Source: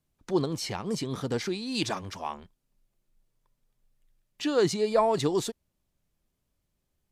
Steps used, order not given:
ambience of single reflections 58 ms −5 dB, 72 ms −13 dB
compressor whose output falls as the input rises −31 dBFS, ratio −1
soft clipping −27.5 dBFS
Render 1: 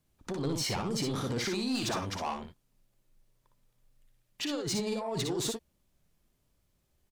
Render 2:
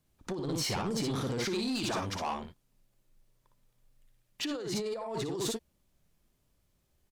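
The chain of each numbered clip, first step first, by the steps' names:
compressor whose output falls as the input rises, then soft clipping, then ambience of single reflections
ambience of single reflections, then compressor whose output falls as the input rises, then soft clipping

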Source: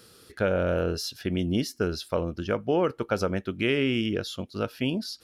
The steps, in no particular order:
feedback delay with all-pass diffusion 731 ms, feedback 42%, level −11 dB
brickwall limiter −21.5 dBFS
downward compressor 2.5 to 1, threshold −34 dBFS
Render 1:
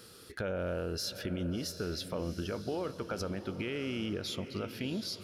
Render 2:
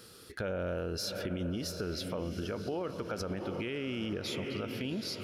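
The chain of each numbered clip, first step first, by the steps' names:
brickwall limiter, then downward compressor, then feedback delay with all-pass diffusion
feedback delay with all-pass diffusion, then brickwall limiter, then downward compressor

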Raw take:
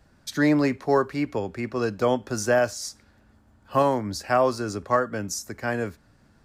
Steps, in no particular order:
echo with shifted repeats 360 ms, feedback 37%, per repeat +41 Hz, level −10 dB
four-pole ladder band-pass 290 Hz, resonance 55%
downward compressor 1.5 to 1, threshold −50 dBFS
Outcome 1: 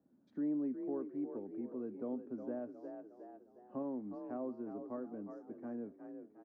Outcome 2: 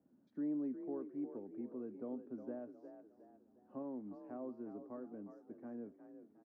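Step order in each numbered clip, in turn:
four-pole ladder band-pass, then echo with shifted repeats, then downward compressor
downward compressor, then four-pole ladder band-pass, then echo with shifted repeats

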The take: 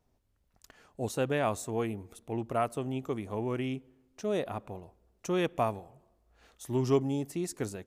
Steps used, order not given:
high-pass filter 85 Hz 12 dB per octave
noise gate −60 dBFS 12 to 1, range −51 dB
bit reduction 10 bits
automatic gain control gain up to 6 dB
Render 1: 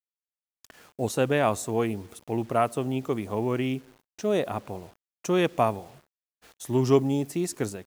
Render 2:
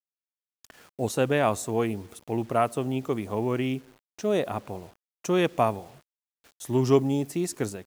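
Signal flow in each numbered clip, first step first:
high-pass filter, then bit reduction, then noise gate, then automatic gain control
high-pass filter, then noise gate, then bit reduction, then automatic gain control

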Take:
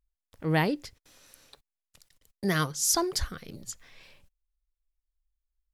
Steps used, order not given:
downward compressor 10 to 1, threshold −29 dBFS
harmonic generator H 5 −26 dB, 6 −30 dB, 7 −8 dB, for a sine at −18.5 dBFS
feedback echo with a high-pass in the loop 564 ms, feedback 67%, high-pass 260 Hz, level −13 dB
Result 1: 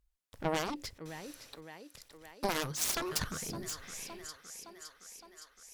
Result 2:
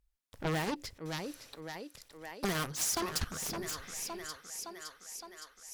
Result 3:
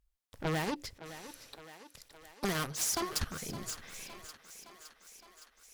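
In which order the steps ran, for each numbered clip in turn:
downward compressor, then feedback echo with a high-pass in the loop, then harmonic generator
feedback echo with a high-pass in the loop, then harmonic generator, then downward compressor
harmonic generator, then downward compressor, then feedback echo with a high-pass in the loop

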